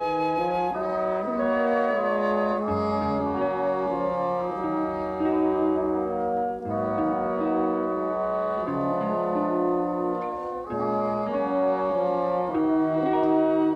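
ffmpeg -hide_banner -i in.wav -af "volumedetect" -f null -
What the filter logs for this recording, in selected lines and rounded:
mean_volume: -24.8 dB
max_volume: -11.0 dB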